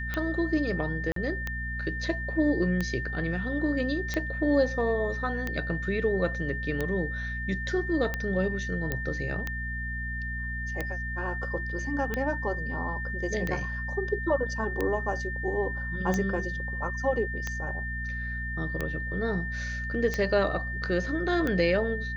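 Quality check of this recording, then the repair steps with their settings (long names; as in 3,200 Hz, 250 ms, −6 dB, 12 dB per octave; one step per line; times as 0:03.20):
mains hum 60 Hz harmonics 4 −35 dBFS
scratch tick 45 rpm −16 dBFS
whistle 1,800 Hz −34 dBFS
0:01.12–0:01.16: drop-out 43 ms
0:08.92: click −15 dBFS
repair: click removal
hum removal 60 Hz, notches 4
notch filter 1,800 Hz, Q 30
repair the gap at 0:01.12, 43 ms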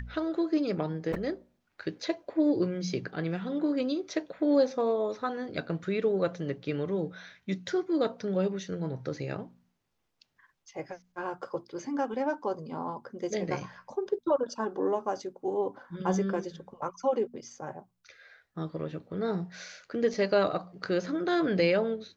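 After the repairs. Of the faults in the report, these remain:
none of them is left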